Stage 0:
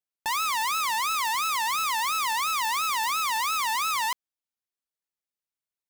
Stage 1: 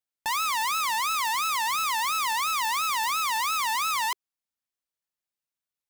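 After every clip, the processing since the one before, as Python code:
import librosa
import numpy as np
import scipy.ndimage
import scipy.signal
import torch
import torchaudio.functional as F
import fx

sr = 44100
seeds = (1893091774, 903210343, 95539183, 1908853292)

y = fx.peak_eq(x, sr, hz=390.0, db=-6.0, octaves=0.24)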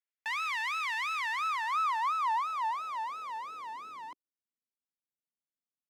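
y = fx.filter_sweep_bandpass(x, sr, from_hz=2000.0, to_hz=240.0, start_s=1.11, end_s=4.49, q=2.1)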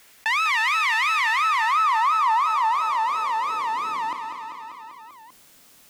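y = fx.echo_feedback(x, sr, ms=196, feedback_pct=53, wet_db=-12)
y = fx.env_flatten(y, sr, amount_pct=50)
y = F.gain(torch.from_numpy(y), 9.0).numpy()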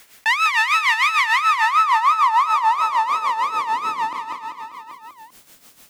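y = x * (1.0 - 0.67 / 2.0 + 0.67 / 2.0 * np.cos(2.0 * np.pi * 6.7 * (np.arange(len(x)) / sr)))
y = F.gain(torch.from_numpy(y), 6.5).numpy()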